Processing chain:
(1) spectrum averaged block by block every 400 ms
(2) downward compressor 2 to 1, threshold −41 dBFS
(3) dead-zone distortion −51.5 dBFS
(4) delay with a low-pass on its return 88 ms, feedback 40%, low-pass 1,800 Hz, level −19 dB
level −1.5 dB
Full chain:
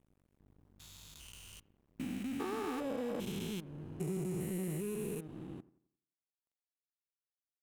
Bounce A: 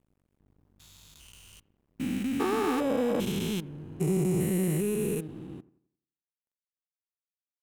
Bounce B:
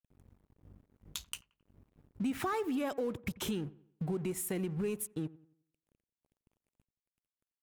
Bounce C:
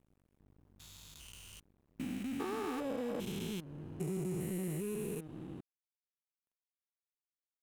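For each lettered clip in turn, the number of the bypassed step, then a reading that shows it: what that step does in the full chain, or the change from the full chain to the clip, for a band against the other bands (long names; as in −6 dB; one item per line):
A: 2, average gain reduction 4.5 dB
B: 1, 125 Hz band −3.5 dB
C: 4, echo-to-direct ratio −20.5 dB to none audible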